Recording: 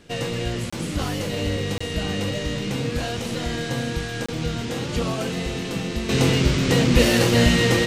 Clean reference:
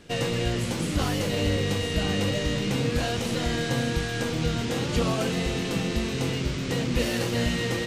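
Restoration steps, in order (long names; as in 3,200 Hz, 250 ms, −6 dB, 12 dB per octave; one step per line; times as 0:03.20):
repair the gap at 0:00.70/0:01.78/0:04.26, 25 ms
level 0 dB, from 0:06.09 −9 dB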